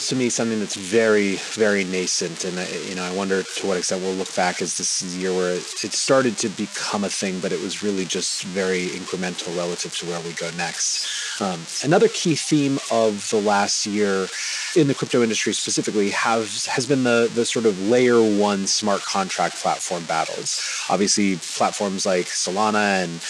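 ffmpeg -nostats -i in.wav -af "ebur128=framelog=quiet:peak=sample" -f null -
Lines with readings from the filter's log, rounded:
Integrated loudness:
  I:         -21.3 LUFS
  Threshold: -31.2 LUFS
Loudness range:
  LRA:         4.7 LU
  Threshold: -41.3 LUFS
  LRA low:   -24.1 LUFS
  LRA high:  -19.3 LUFS
Sample peak:
  Peak:       -3.3 dBFS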